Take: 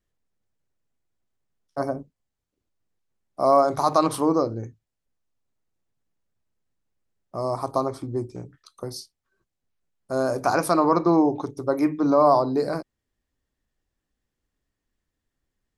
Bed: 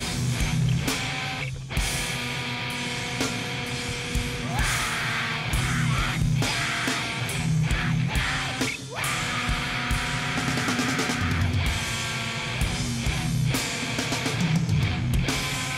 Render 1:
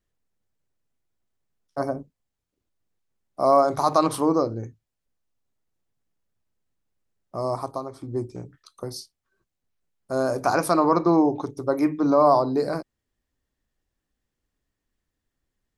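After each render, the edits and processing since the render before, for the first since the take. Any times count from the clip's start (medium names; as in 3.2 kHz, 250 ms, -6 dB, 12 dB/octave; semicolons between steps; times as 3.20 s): 7.55–8.18 s: dip -8.5 dB, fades 0.25 s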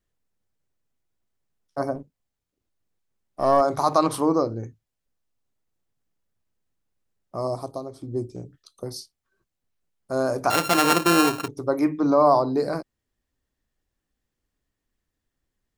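1.95–3.61 s: partial rectifier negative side -3 dB; 7.47–8.86 s: high-order bell 1.4 kHz -8.5 dB; 10.50–11.48 s: sorted samples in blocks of 32 samples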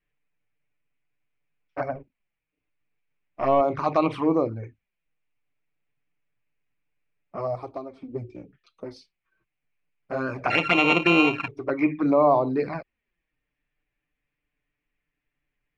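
touch-sensitive flanger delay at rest 6.8 ms, full sweep at -16.5 dBFS; resonant low-pass 2.4 kHz, resonance Q 5.1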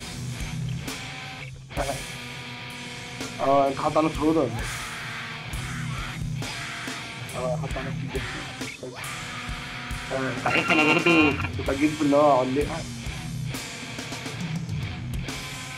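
add bed -7 dB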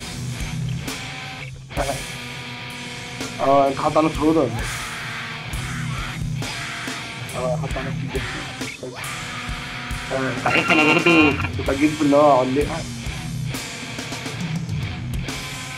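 trim +4.5 dB; peak limiter -2 dBFS, peak gain reduction 1 dB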